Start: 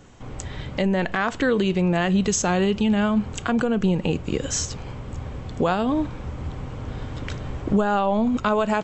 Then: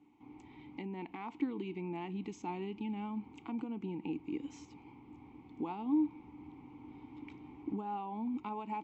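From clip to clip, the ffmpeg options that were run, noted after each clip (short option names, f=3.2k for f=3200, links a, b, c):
-filter_complex "[0:a]asplit=3[a][b][c];[a]bandpass=f=300:t=q:w=8,volume=0dB[d];[b]bandpass=f=870:t=q:w=8,volume=-6dB[e];[c]bandpass=f=2.24k:t=q:w=8,volume=-9dB[f];[d][e][f]amix=inputs=3:normalize=0,volume=-4.5dB"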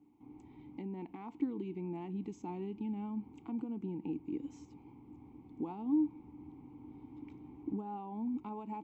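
-af "equalizer=f=2.6k:w=0.35:g=-12,volume=1.5dB"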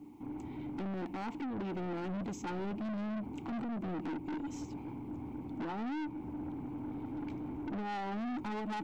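-af "alimiter=level_in=7dB:limit=-24dB:level=0:latency=1:release=261,volume=-7dB,aeval=exprs='(tanh(316*val(0)+0.15)-tanh(0.15))/316':c=same,volume=14dB"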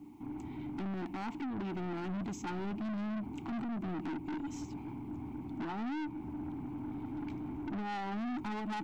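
-af "equalizer=f=510:t=o:w=0.4:g=-12.5,volume=1dB"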